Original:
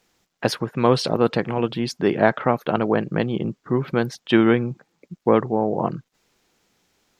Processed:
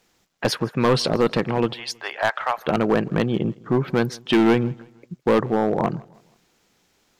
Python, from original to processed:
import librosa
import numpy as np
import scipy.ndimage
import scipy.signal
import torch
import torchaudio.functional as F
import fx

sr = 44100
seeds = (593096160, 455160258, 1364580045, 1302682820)

y = fx.highpass(x, sr, hz=760.0, slope=24, at=(1.73, 2.58))
y = np.clip(y, -10.0 ** (-14.0 / 20.0), 10.0 ** (-14.0 / 20.0))
y = fx.echo_feedback(y, sr, ms=160, feedback_pct=40, wet_db=-24.0)
y = y * 10.0 ** (2.0 / 20.0)